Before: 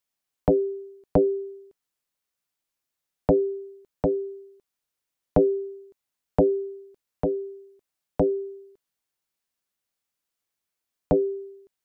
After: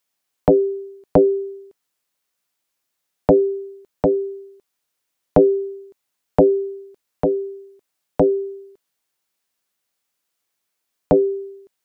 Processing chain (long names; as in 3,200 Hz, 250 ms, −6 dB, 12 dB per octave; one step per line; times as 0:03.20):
low-shelf EQ 130 Hz −8.5 dB
level +7.5 dB